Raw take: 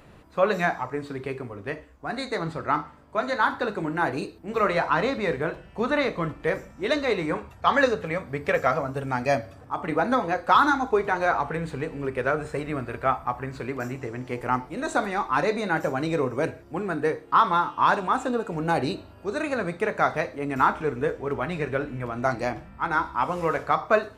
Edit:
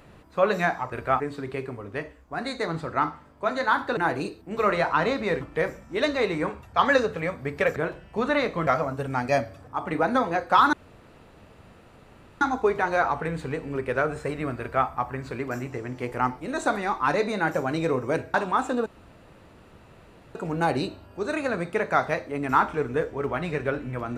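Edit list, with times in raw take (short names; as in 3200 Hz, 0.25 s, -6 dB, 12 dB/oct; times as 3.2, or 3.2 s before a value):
3.69–3.94 cut
5.38–6.29 move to 8.64
10.7 insert room tone 1.68 s
12.88–13.16 copy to 0.92
16.63–17.9 cut
18.42 insert room tone 1.49 s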